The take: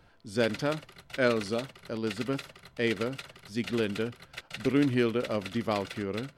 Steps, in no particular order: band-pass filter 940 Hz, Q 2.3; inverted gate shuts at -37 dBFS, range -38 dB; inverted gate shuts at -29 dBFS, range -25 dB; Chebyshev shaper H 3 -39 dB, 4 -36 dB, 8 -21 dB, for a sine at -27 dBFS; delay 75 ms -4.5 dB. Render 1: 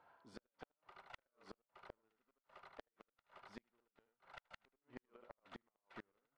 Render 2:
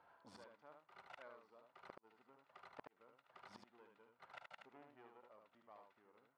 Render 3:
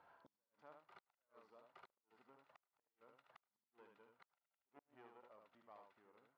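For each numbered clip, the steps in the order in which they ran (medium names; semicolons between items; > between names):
band-pass filter > second inverted gate > delay > Chebyshev shaper > first inverted gate; second inverted gate > Chebyshev shaper > band-pass filter > first inverted gate > delay; second inverted gate > Chebyshev shaper > delay > first inverted gate > band-pass filter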